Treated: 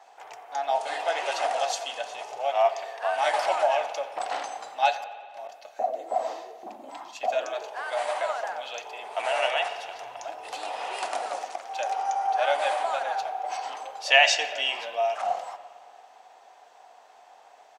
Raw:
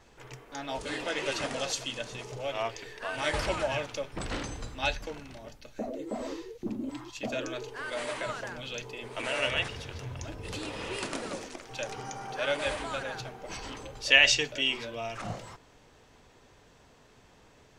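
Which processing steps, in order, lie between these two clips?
5.03–5.49 s: inverted gate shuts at -35 dBFS, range -28 dB; resonant high-pass 740 Hz, resonance Q 8.1; frequency-shifting echo 89 ms, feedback 56%, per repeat -43 Hz, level -23 dB; spring tank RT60 1.9 s, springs 56 ms, chirp 80 ms, DRR 12 dB

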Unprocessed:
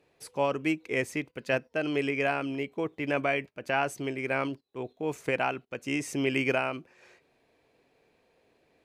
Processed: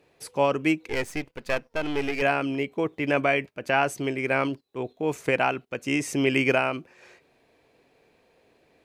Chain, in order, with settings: 0.89–2.22 s: partial rectifier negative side -12 dB; trim +5 dB

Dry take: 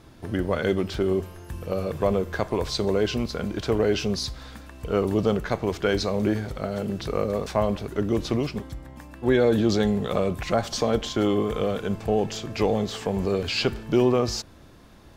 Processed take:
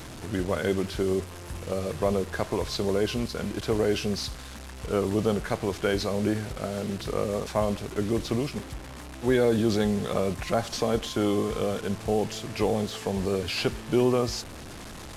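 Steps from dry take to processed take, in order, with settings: one-bit delta coder 64 kbps, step -32.5 dBFS; trim -2.5 dB

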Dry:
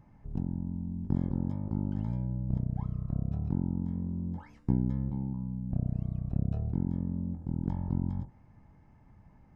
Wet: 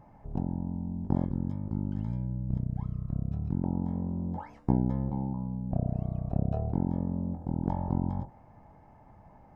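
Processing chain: peaking EQ 700 Hz +12.5 dB 1.5 oct, from 1.25 s -2 dB, from 3.64 s +14 dB

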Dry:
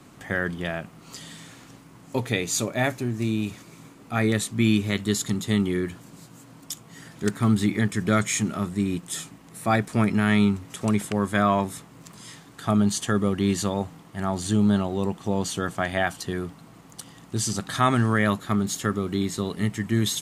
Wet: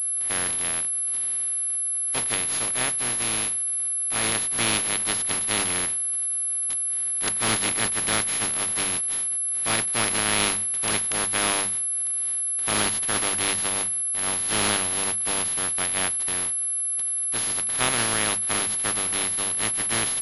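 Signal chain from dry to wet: spectral contrast reduction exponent 0.18; hum notches 50/100/150/200 Hz; class-D stage that switches slowly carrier 11 kHz; trim -2 dB

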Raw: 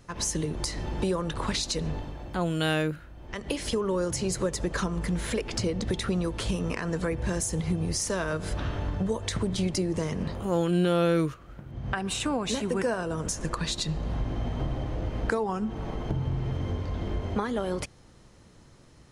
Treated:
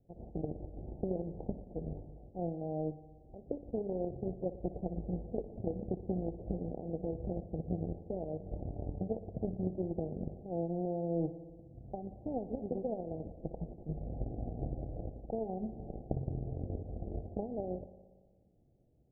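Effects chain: Chebyshev shaper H 3 -10 dB, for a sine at -11 dBFS; reverse; compression 10:1, threshold -40 dBFS, peak gain reduction 15 dB; reverse; steep low-pass 780 Hz 96 dB/octave; spring tank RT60 1.5 s, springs 59 ms, DRR 12.5 dB; trim +11 dB

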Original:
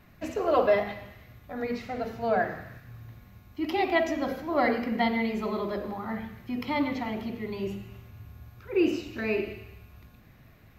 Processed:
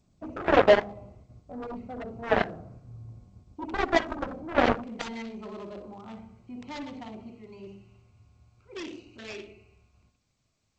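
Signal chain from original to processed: local Wiener filter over 25 samples; gate -51 dBFS, range -10 dB; tilt shelf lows +4 dB, about 1.4 kHz, from 4.82 s lows -5 dB, from 7.28 s lows -9.5 dB; flutter echo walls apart 10.5 m, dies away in 0.26 s; Chebyshev shaper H 7 -13 dB, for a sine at -8.5 dBFS; dynamic bell 3.6 kHz, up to -4 dB, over -42 dBFS, Q 1; trim +1.5 dB; G.722 64 kbps 16 kHz

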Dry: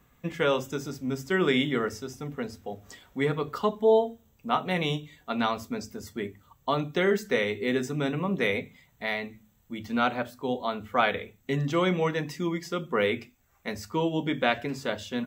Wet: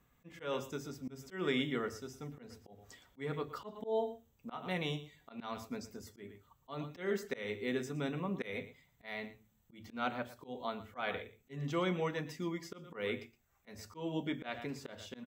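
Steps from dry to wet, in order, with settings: delay 116 ms -16 dB; slow attack 170 ms; trim -9 dB

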